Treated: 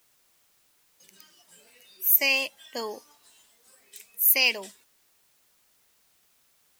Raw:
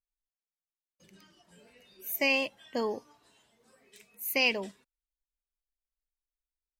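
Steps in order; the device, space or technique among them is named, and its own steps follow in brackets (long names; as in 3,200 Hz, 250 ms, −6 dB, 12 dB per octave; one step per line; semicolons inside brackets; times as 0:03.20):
turntable without a phono preamp (RIAA equalisation recording; white noise bed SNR 35 dB)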